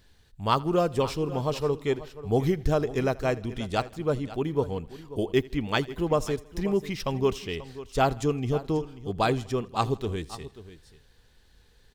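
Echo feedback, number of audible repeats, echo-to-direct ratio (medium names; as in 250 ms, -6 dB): no regular repeats, 4, -14.5 dB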